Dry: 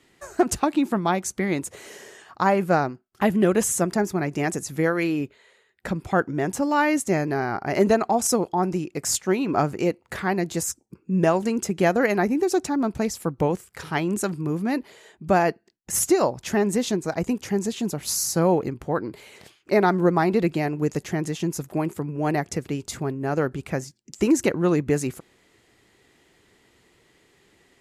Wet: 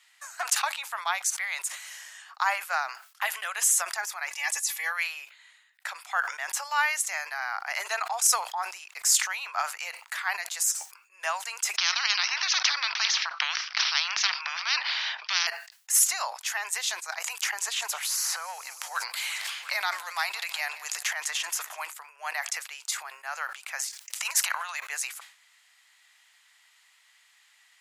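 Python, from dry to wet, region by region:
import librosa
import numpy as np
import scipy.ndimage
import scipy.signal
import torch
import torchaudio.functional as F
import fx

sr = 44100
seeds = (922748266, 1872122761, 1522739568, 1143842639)

y = fx.chain(x, sr, fx.peak_eq(hz=1400.0, db=-13.0, octaves=0.24),
    fx.notch(hz=600.0, q=7.2),
    fx.comb(ms=3.5, depth=0.75), at=(4.3, 4.92))
y = fx.peak_eq(y, sr, hz=400.0, db=4.0, octaves=0.41, at=(7.41, 9.05), fade=0.02)
y = fx.dmg_noise_colour(y, sr, seeds[0], colour='brown', level_db=-56.0, at=(7.41, 9.05), fade=0.02)
y = fx.chain(y, sr, fx.steep_lowpass(hz=5700.0, slope=96),
    fx.spectral_comp(ratio=10.0), at=(11.77, 15.47))
y = fx.chain(y, sr, fx.transient(attack_db=-10, sustain_db=4),
    fx.echo_feedback(ms=173, feedback_pct=57, wet_db=-22.0),
    fx.band_squash(depth_pct=100), at=(17.22, 21.87))
y = fx.spec_clip(y, sr, under_db=21, at=(23.78, 24.79), fade=0.02)
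y = fx.over_compress(y, sr, threshold_db=-25.0, ratio=-0.5, at=(23.78, 24.79), fade=0.02)
y = scipy.signal.sosfilt(scipy.signal.bessel(8, 1500.0, 'highpass', norm='mag', fs=sr, output='sos'), y)
y = fx.sustainer(y, sr, db_per_s=110.0)
y = F.gain(torch.from_numpy(y), 3.0).numpy()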